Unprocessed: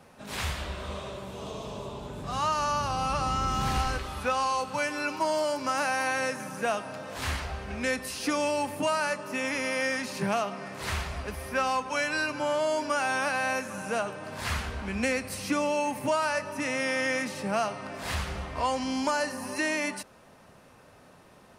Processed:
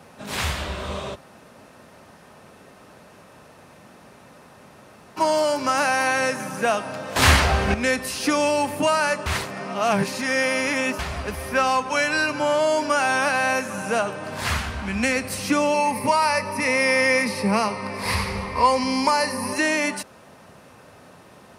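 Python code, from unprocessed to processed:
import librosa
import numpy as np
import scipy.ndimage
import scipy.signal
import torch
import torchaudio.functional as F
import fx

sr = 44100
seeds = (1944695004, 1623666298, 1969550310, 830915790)

y = fx.peak_eq(x, sr, hz=440.0, db=-6.5, octaves=0.77, at=(14.58, 15.16))
y = fx.ripple_eq(y, sr, per_octave=0.89, db=11, at=(15.74, 19.53))
y = fx.edit(y, sr, fx.room_tone_fill(start_s=1.15, length_s=4.02, crossfade_s=0.02),
    fx.clip_gain(start_s=7.16, length_s=0.58, db=10.0),
    fx.reverse_span(start_s=9.26, length_s=1.73), tone=tone)
y = scipy.signal.sosfilt(scipy.signal.butter(2, 63.0, 'highpass', fs=sr, output='sos'), y)
y = y * librosa.db_to_amplitude(7.0)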